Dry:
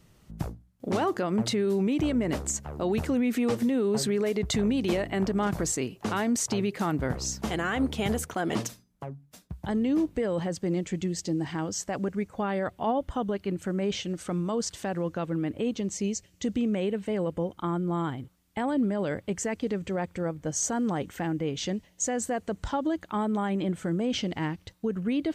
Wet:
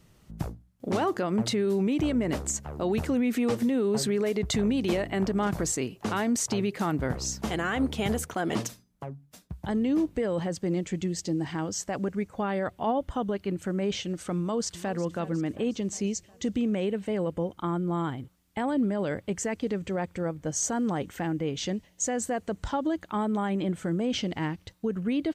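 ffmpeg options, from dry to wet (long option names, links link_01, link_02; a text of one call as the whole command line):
ffmpeg -i in.wav -filter_complex "[0:a]asplit=2[link_01][link_02];[link_02]afade=type=in:start_time=14.38:duration=0.01,afade=type=out:start_time=14.99:duration=0.01,aecho=0:1:360|720|1080|1440|1800|2160:0.16788|0.100728|0.0604369|0.0362622|0.0217573|0.0130544[link_03];[link_01][link_03]amix=inputs=2:normalize=0" out.wav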